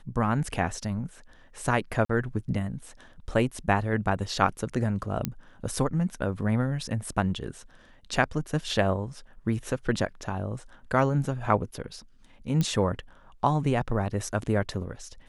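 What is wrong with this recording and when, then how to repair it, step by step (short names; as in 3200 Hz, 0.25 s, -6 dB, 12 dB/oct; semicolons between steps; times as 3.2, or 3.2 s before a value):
2.05–2.09 gap 44 ms
5.25 pop -11 dBFS
12.61 pop -14 dBFS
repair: de-click; interpolate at 2.05, 44 ms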